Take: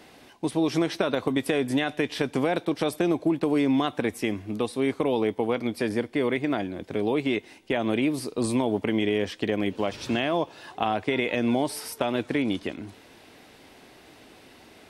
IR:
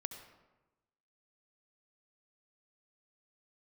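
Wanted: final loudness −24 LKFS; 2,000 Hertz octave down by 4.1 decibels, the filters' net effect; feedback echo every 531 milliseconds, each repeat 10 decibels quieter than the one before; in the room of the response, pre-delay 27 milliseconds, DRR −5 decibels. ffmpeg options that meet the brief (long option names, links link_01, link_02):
-filter_complex "[0:a]equalizer=frequency=2000:width_type=o:gain=-5,aecho=1:1:531|1062|1593|2124:0.316|0.101|0.0324|0.0104,asplit=2[link_01][link_02];[1:a]atrim=start_sample=2205,adelay=27[link_03];[link_02][link_03]afir=irnorm=-1:irlink=0,volume=7dB[link_04];[link_01][link_04]amix=inputs=2:normalize=0,volume=-3.5dB"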